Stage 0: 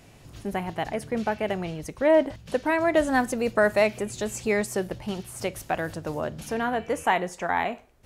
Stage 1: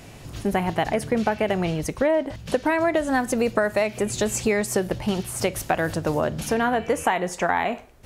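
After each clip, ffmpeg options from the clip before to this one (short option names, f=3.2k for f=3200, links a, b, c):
-af "acompressor=threshold=-26dB:ratio=12,volume=8.5dB"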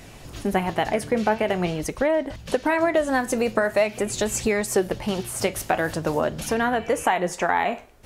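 -af "equalizer=f=110:w=0.96:g=-4.5,flanger=delay=0.5:depth=9.6:regen=72:speed=0.45:shape=sinusoidal,volume=5dB"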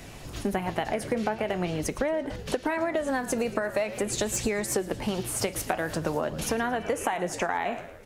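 -filter_complex "[0:a]asplit=5[a][b][c][d][e];[b]adelay=112,afreqshift=-70,volume=-17.5dB[f];[c]adelay=224,afreqshift=-140,volume=-23.2dB[g];[d]adelay=336,afreqshift=-210,volume=-28.9dB[h];[e]adelay=448,afreqshift=-280,volume=-34.5dB[i];[a][f][g][h][i]amix=inputs=5:normalize=0,acrossover=split=120|4800[j][k][l];[l]volume=22.5dB,asoftclip=hard,volume=-22.5dB[m];[j][k][m]amix=inputs=3:normalize=0,acompressor=threshold=-24dB:ratio=6"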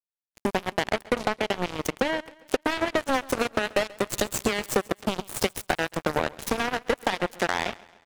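-af "aeval=exprs='(tanh(5.01*val(0)+0.3)-tanh(0.3))/5.01':c=same,acrusher=bits=3:mix=0:aa=0.5,aecho=1:1:134|268|402|536:0.0794|0.0405|0.0207|0.0105,volume=5dB"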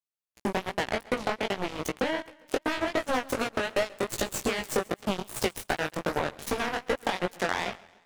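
-af "flanger=delay=15.5:depth=6.9:speed=2.6"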